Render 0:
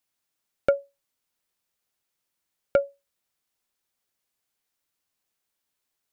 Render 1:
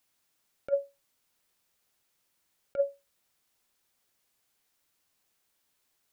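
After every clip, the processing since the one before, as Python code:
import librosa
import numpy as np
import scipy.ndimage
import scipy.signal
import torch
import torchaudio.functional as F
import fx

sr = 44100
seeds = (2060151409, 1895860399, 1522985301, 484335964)

y = fx.over_compress(x, sr, threshold_db=-26.0, ratio=-0.5)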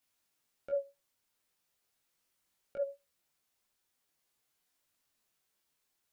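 y = fx.detune_double(x, sr, cents=14)
y = F.gain(torch.from_numpy(y), -1.0).numpy()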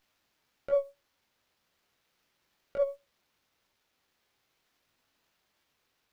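y = fx.running_max(x, sr, window=5)
y = F.gain(torch.from_numpy(y), 7.0).numpy()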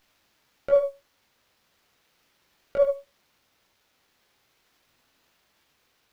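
y = x + 10.0 ** (-9.0 / 20.0) * np.pad(x, (int(74 * sr / 1000.0), 0))[:len(x)]
y = F.gain(torch.from_numpy(y), 7.5).numpy()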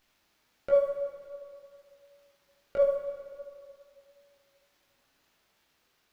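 y = fx.rev_plate(x, sr, seeds[0], rt60_s=2.3, hf_ratio=0.8, predelay_ms=0, drr_db=4.0)
y = F.gain(torch.from_numpy(y), -4.5).numpy()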